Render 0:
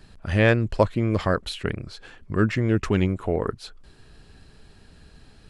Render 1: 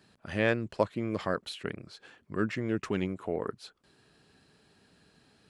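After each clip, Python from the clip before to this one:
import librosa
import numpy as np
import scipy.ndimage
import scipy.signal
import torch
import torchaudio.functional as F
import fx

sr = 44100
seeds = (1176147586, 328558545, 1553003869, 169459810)

y = scipy.signal.sosfilt(scipy.signal.butter(2, 160.0, 'highpass', fs=sr, output='sos'), x)
y = F.gain(torch.from_numpy(y), -7.5).numpy()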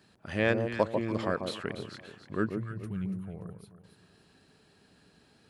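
y = fx.spec_box(x, sr, start_s=2.47, length_s=1.37, low_hz=210.0, high_hz=8800.0, gain_db=-17)
y = fx.echo_alternate(y, sr, ms=144, hz=990.0, feedback_pct=57, wet_db=-5)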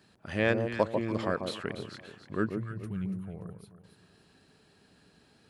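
y = x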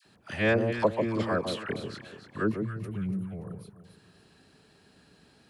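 y = fx.dispersion(x, sr, late='lows', ms=55.0, hz=1000.0)
y = F.gain(torch.from_numpy(y), 2.5).numpy()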